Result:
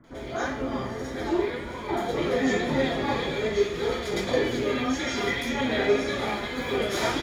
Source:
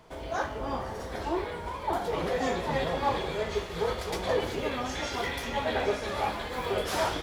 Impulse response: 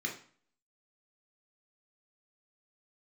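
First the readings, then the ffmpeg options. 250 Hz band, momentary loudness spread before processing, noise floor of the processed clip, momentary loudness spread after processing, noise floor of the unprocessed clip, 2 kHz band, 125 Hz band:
+8.5 dB, 5 LU, -36 dBFS, 6 LU, -38 dBFS, +5.0 dB, +3.0 dB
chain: -filter_complex "[0:a]acrossover=split=1400[a][b];[b]adelay=40[c];[a][c]amix=inputs=2:normalize=0[d];[1:a]atrim=start_sample=2205[e];[d][e]afir=irnorm=-1:irlink=0,flanger=delay=3.5:depth=1.5:regen=62:speed=1.8:shape=sinusoidal,volume=6dB"

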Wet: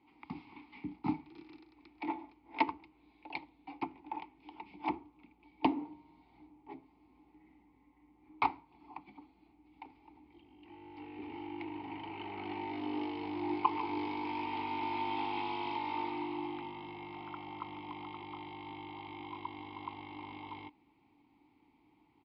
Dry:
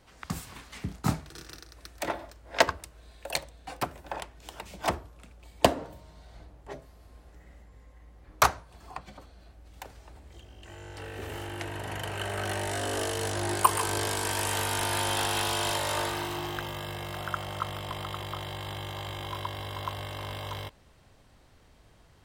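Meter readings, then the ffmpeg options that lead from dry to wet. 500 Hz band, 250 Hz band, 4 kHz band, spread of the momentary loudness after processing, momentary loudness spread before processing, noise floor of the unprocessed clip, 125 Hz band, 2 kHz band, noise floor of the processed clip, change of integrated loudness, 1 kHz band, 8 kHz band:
-12.5 dB, -0.5 dB, -16.0 dB, 19 LU, 20 LU, -58 dBFS, -17.0 dB, -11.5 dB, -69 dBFS, -8.5 dB, -5.5 dB, under -40 dB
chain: -filter_complex "[0:a]aresample=11025,aresample=44100,asplit=3[a][b][c];[a]bandpass=f=300:t=q:w=8,volume=0dB[d];[b]bandpass=f=870:t=q:w=8,volume=-6dB[e];[c]bandpass=f=2.24k:t=q:w=8,volume=-9dB[f];[d][e][f]amix=inputs=3:normalize=0,volume=6dB"

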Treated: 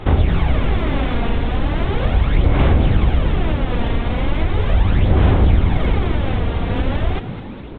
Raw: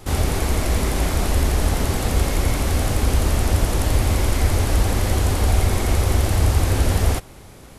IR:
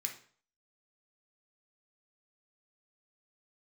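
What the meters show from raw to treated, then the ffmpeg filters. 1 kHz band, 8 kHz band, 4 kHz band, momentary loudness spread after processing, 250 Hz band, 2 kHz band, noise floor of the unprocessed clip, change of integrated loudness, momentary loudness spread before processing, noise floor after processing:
+1.5 dB, under -35 dB, -2.5 dB, 6 LU, +4.5 dB, +1.0 dB, -42 dBFS, +2.0 dB, 3 LU, -30 dBFS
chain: -filter_complex "[0:a]aresample=8000,aresample=44100,acompressor=threshold=-21dB:ratio=3,aphaser=in_gain=1:out_gain=1:delay=4.3:decay=0.54:speed=0.38:type=sinusoidal,asplit=2[a][b];[b]asplit=6[c][d][e][f][g][h];[c]adelay=211,afreqshift=92,volume=-12.5dB[i];[d]adelay=422,afreqshift=184,volume=-17.9dB[j];[e]adelay=633,afreqshift=276,volume=-23.2dB[k];[f]adelay=844,afreqshift=368,volume=-28.6dB[l];[g]adelay=1055,afreqshift=460,volume=-33.9dB[m];[h]adelay=1266,afreqshift=552,volume=-39.3dB[n];[i][j][k][l][m][n]amix=inputs=6:normalize=0[o];[a][o]amix=inputs=2:normalize=0,volume=4dB"

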